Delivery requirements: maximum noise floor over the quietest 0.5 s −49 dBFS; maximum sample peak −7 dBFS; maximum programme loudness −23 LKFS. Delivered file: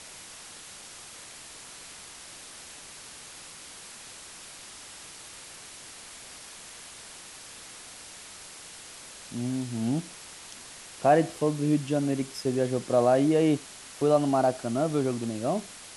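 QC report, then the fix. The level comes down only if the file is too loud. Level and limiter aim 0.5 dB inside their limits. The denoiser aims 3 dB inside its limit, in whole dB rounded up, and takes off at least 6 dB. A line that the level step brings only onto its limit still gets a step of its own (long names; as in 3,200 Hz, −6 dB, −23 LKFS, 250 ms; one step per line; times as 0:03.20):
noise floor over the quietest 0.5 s −46 dBFS: out of spec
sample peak −10.0 dBFS: in spec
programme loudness −26.5 LKFS: in spec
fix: broadband denoise 6 dB, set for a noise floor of −46 dBFS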